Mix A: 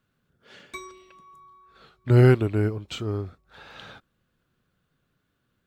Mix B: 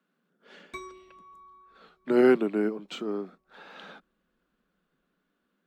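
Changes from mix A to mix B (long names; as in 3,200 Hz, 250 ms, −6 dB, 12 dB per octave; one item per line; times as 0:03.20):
speech: add Butterworth high-pass 170 Hz 72 dB per octave
master: add high-shelf EQ 3,000 Hz −8 dB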